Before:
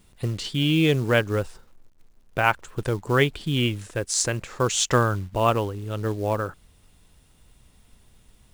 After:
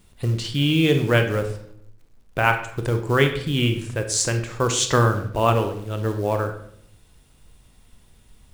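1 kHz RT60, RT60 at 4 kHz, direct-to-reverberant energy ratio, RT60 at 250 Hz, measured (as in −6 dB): 0.60 s, 0.50 s, 6.0 dB, 0.95 s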